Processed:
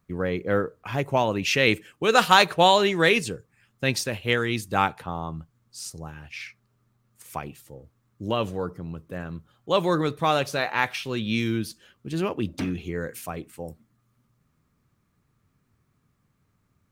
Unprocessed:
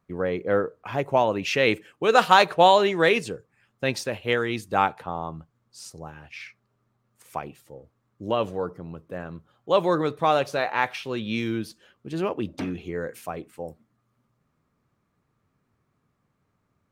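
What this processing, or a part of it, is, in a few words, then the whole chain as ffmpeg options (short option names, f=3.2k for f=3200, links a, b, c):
smiley-face EQ: -af "lowshelf=f=120:g=5,equalizer=f=640:t=o:w=1.9:g=-5.5,highshelf=f=6.3k:g=6,volume=2.5dB"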